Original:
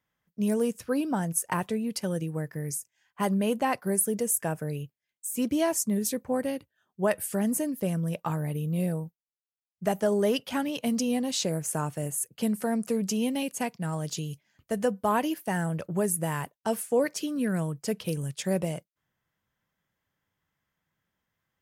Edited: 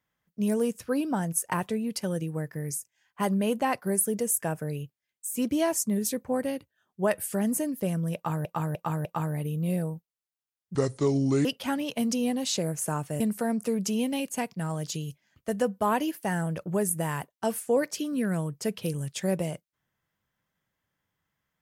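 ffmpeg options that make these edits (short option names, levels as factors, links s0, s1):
-filter_complex "[0:a]asplit=7[s0][s1][s2][s3][s4][s5][s6];[s0]atrim=end=8.452[s7];[s1]atrim=start=8.148:end=8.452[s8];[s2]atrim=start=8.148:end=8.452[s9];[s3]atrim=start=8.148:end=9.854[s10];[s4]atrim=start=9.85:end=10.32,asetpts=PTS-STARTPTS,asetrate=29547,aresample=44100[s11];[s5]atrim=start=10.316:end=12.072[s12];[s6]atrim=start=12.428[s13];[s7][s8]acrossfade=d=0.004:c1=hsin:c2=hsin[s14];[s14][s9]acrossfade=d=0.004:c1=hsin:c2=hsin[s15];[s15][s10]acrossfade=d=0.004:c1=hsin:c2=hsin[s16];[s16][s11]acrossfade=d=0.004:c1=hsin:c2=hsin[s17];[s17][s12]acrossfade=d=0.004:c1=hsin:c2=hsin[s18];[s18][s13]acrossfade=d=0.004:c1=hsin:c2=hsin"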